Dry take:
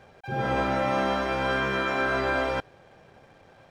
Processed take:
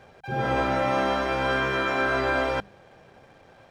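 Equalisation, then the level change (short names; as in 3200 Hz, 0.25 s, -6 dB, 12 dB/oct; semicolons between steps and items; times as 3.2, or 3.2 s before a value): notches 50/100/150/200 Hz; +1.5 dB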